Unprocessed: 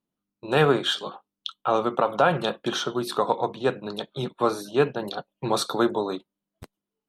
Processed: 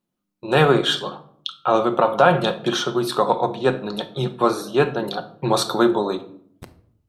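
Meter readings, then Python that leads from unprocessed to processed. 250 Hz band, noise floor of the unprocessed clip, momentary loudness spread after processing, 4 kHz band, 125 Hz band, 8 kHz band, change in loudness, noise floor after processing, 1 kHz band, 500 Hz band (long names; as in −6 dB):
+5.5 dB, below −85 dBFS, 12 LU, +4.5 dB, +6.0 dB, +4.5 dB, +5.0 dB, −80 dBFS, +5.0 dB, +4.5 dB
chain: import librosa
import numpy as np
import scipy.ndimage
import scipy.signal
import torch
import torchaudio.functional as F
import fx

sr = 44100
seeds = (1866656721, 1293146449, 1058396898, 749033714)

y = fx.room_shoebox(x, sr, seeds[0], volume_m3=980.0, walls='furnished', distance_m=0.93)
y = y * librosa.db_to_amplitude(4.0)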